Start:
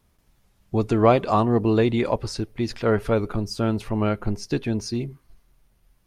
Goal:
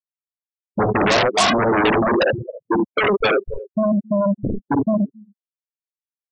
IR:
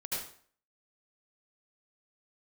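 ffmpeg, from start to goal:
-filter_complex "[0:a]afftfilt=real='re*gte(hypot(re,im),0.631)':imag='im*gte(hypot(re,im),0.631)':win_size=1024:overlap=0.75,asplit=2[a][b];[b]adelay=260,highpass=300,lowpass=3.4k,asoftclip=type=hard:threshold=-17dB,volume=-26dB[c];[a][c]amix=inputs=2:normalize=0,acompressor=threshold=-24dB:ratio=16,asplit=2[d][e];[e]aecho=0:1:48|58|73:0.422|0.355|0.422[f];[d][f]amix=inputs=2:normalize=0,adynamicequalizer=threshold=0.00447:dfrequency=910:dqfactor=1.4:tfrequency=910:tqfactor=1.4:attack=5:release=100:ratio=0.375:range=4:mode=boostabove:tftype=bell,asplit=2[g][h];[h]aeval=exprs='0.211*sin(PI/2*7.94*val(0)/0.211)':c=same,volume=-5.5dB[i];[g][i]amix=inputs=2:normalize=0,lowshelf=f=100:g=-10.5,afftdn=nr=17:nf=-36,asetrate=42336,aresample=44100,volume=4.5dB"

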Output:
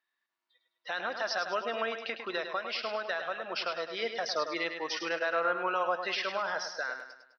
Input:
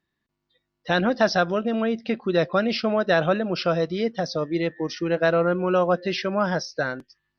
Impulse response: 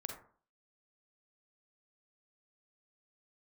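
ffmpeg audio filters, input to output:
-filter_complex "[0:a]highpass=1k,highshelf=f=4.3k:g=-9,asettb=1/sr,asplit=3[a][b][c];[a]atrim=end=1.924[d];[b]atrim=start=1.92:end=4.02,asetpts=PTS-STARTPTS,afade=t=in:d=0.004:c=qsin,afade=t=out:st=2.096:d=0.004:c=qsin,acompressor=threshold=-36dB:ratio=6[e];[c]atrim=start=4.016[f];[d][e]acrossfade=d=0.004:c1=hsin:c2=qsin[g];[g][f]acrossfade=d=0.004:c1=qsin:c2=hsin,alimiter=level_in=1dB:limit=-24dB:level=0:latency=1:release=105,volume=-1dB,dynaudnorm=f=240:g=11:m=4.5dB,aecho=1:1:103|206|309|412|515:0.398|0.179|0.0806|0.0363|0.0163"

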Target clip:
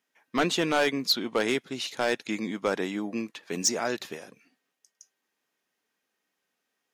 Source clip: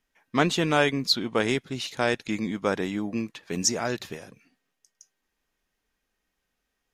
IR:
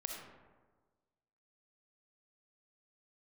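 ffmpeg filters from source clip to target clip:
-af "highpass=230,volume=16.5dB,asoftclip=hard,volume=-16.5dB"

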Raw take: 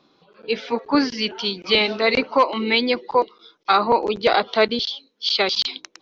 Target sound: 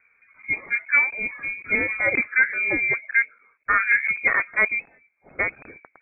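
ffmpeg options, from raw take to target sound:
-af "equalizer=f=100:t=o:w=0.67:g=6,equalizer=f=630:t=o:w=0.67:g=-5,equalizer=f=1.6k:t=o:w=0.67:g=-5,lowpass=f=2.2k:t=q:w=0.5098,lowpass=f=2.2k:t=q:w=0.6013,lowpass=f=2.2k:t=q:w=0.9,lowpass=f=2.2k:t=q:w=2.563,afreqshift=-2600"

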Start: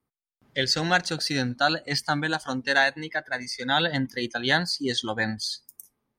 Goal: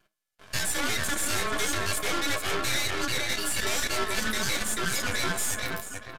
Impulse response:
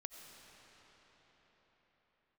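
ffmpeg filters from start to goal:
-filter_complex "[0:a]highpass=110,bandreject=f=60:t=h:w=6,bandreject=f=120:t=h:w=6,bandreject=f=180:t=h:w=6,bandreject=f=240:t=h:w=6,bandreject=f=300:t=h:w=6,bandreject=f=360:t=h:w=6,aecho=1:1:2.4:0.92,acompressor=threshold=-31dB:ratio=3,asetrate=78577,aresample=44100,atempo=0.561231,asplit=2[a][b];[b]adelay=436,lowpass=f=1.5k:p=1,volume=-4.5dB,asplit=2[c][d];[d]adelay=436,lowpass=f=1.5k:p=1,volume=0.37,asplit=2[e][f];[f]adelay=436,lowpass=f=1.5k:p=1,volume=0.37,asplit=2[g][h];[h]adelay=436,lowpass=f=1.5k:p=1,volume=0.37,asplit=2[i][j];[j]adelay=436,lowpass=f=1.5k:p=1,volume=0.37[k];[a][c][e][g][i][k]amix=inputs=6:normalize=0,apsyclip=27dB,aeval=exprs='val(0)*sin(2*PI*860*n/s)':c=same,volume=12.5dB,asoftclip=hard,volume=-12.5dB,flanger=delay=9.3:depth=1.1:regen=-18:speed=1.8:shape=sinusoidal,aeval=exprs='max(val(0),0)':c=same,aresample=32000,aresample=44100,volume=-5dB"

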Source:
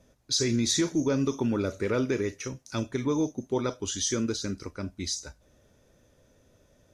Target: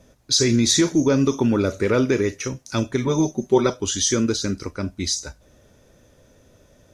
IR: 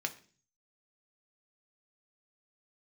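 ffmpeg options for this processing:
-filter_complex "[0:a]asettb=1/sr,asplit=3[a][b][c];[a]atrim=end=3.064[d];[b]atrim=start=3.06:end=3.7,asetpts=PTS-STARTPTS,afade=t=in:d=0.004:c=qsin,afade=t=out:st=0.636:d=0.004:c=qsin,aecho=1:1:5.3:0.78,atrim=end_sample=28224[e];[c]atrim=start=3.696[f];[d][e]acrossfade=d=0.004:c1=hsin:c2=qsin[g];[g][f]acrossfade=d=0.004:c1=qsin:c2=hsin,volume=8dB"

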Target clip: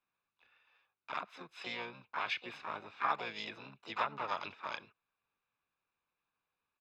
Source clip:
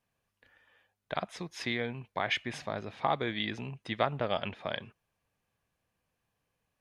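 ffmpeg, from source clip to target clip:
-filter_complex "[0:a]asplit=4[a][b][c][d];[b]asetrate=52444,aresample=44100,atempo=0.840896,volume=-15dB[e];[c]asetrate=66075,aresample=44100,atempo=0.66742,volume=-3dB[f];[d]asetrate=88200,aresample=44100,atempo=0.5,volume=-8dB[g];[a][e][f][g]amix=inputs=4:normalize=0,acrossover=split=400 4000:gain=0.158 1 0.0631[h][i][j];[h][i][j]amix=inputs=3:normalize=0,aecho=1:1:0.8:0.48,volume=-6.5dB"

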